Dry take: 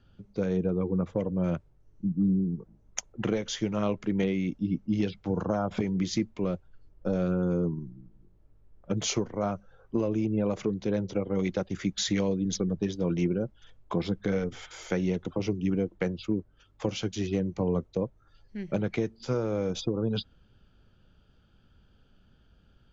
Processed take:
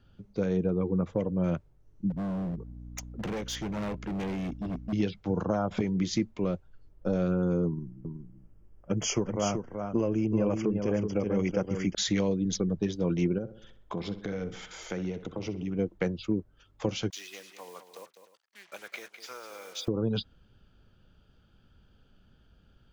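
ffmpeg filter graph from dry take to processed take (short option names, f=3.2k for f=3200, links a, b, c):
-filter_complex "[0:a]asettb=1/sr,asplit=3[a][b][c];[a]atrim=end=2.104[d];[b]atrim=start=2.1:end=4.93,asetpts=PTS-STARTPTS,afade=t=in:d=0.004:c=qsin,afade=t=out:st=2.826:d=0.004:c=qsin,aeval=exprs='val(0)+0.00794*(sin(2*PI*60*n/s)+sin(2*PI*2*60*n/s)/2+sin(2*PI*3*60*n/s)/3+sin(2*PI*4*60*n/s)/4+sin(2*PI*5*60*n/s)/5)':c=same,volume=30.5dB,asoftclip=hard,volume=-30.5dB[e];[c]atrim=start=4.926[f];[d][e]acrossfade=d=0.004:c1=hsin:c2=qsin[g];[g][f]acrossfade=d=0.004:c1=qsin:c2=hsin,asettb=1/sr,asplit=3[h][i][j];[h]atrim=end=7.674[k];[i]atrim=start=7.67:end=11.95,asetpts=PTS-STARTPTS,afade=t=in:d=0.004:c=qsin,afade=t=out:st=4.276:d=0.004:c=qsin,asuperstop=centerf=3900:order=12:qfactor=3,aecho=1:1:378:0.501,atrim=end_sample=188748[l];[j]atrim=start=11.946[m];[k][l]acrossfade=d=0.004:c1=hsin:c2=qsin[n];[n][m]acrossfade=d=0.004:c1=qsin:c2=hsin,asettb=1/sr,asplit=3[o][p][q];[o]atrim=end=13.384[r];[p]atrim=start=13.38:end=15.79,asetpts=PTS-STARTPTS,afade=t=in:d=0.004:c=qsin,afade=t=out:st=2.406:d=0.004:c=qsin,acompressor=threshold=-34dB:ratio=2:attack=3.2:release=140:knee=1:detection=peak,asplit=2[s][t];[t]adelay=64,lowpass=f=3.4k:p=1,volume=-12dB,asplit=2[u][v];[v]adelay=64,lowpass=f=3.4k:p=1,volume=0.54,asplit=2[w][x];[x]adelay=64,lowpass=f=3.4k:p=1,volume=0.54,asplit=2[y][z];[z]adelay=64,lowpass=f=3.4k:p=1,volume=0.54,asplit=2[aa][ab];[ab]adelay=64,lowpass=f=3.4k:p=1,volume=0.54,asplit=2[ac][ad];[ad]adelay=64,lowpass=f=3.4k:p=1,volume=0.54[ae];[s][u][w][y][aa][ac][ae]amix=inputs=7:normalize=0,atrim=end_sample=106281[af];[q]atrim=start=15.786[ag];[r][af]acrossfade=d=0.004:c1=hsin:c2=qsin[ah];[ah][ag]acrossfade=d=0.004:c1=qsin:c2=hsin,asettb=1/sr,asplit=3[ai][aj][ak];[ai]atrim=end=17.104[al];[aj]atrim=start=17.1:end=19.88,asetpts=PTS-STARTPTS,afade=t=in:d=0.004:c=qsin,afade=t=out:st=2.776:d=0.004:c=qsin,acrusher=bits=7:mix=0:aa=0.5,highpass=1.3k,aecho=1:1:203|304:0.316|0.133,atrim=end_sample=122598[am];[ak]atrim=start=19.876[an];[al][am]acrossfade=d=0.004:c1=hsin:c2=qsin[ao];[ao][an]acrossfade=d=0.004:c1=qsin:c2=hsin"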